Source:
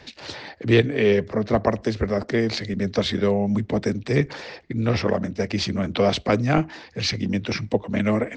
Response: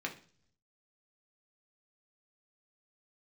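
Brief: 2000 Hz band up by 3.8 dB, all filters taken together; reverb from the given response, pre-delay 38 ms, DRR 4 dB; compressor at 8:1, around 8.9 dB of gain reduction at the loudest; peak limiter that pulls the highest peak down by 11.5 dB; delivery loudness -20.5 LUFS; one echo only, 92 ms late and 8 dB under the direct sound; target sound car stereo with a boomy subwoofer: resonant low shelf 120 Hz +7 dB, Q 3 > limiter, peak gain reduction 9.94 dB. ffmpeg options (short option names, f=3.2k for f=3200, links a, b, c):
-filter_complex "[0:a]equalizer=f=2k:t=o:g=4.5,acompressor=threshold=-20dB:ratio=8,alimiter=limit=-21dB:level=0:latency=1,aecho=1:1:92:0.398,asplit=2[a][b];[1:a]atrim=start_sample=2205,adelay=38[c];[b][c]afir=irnorm=-1:irlink=0,volume=-7dB[d];[a][d]amix=inputs=2:normalize=0,lowshelf=f=120:t=q:w=3:g=7,volume=10.5dB,alimiter=limit=-12dB:level=0:latency=1"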